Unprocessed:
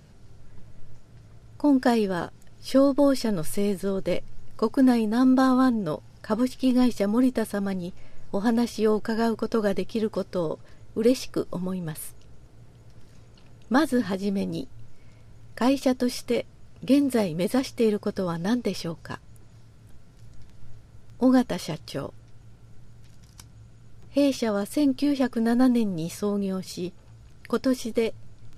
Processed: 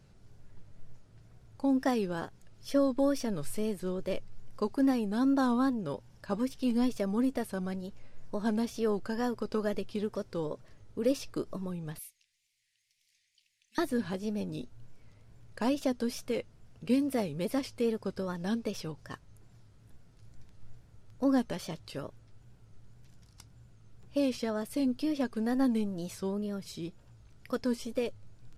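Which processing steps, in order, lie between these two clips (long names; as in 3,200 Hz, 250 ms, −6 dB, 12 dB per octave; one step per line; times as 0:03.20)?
0:11.98–0:13.78: elliptic high-pass filter 2,000 Hz, stop band 40 dB
tape wow and flutter 120 cents
level −7.5 dB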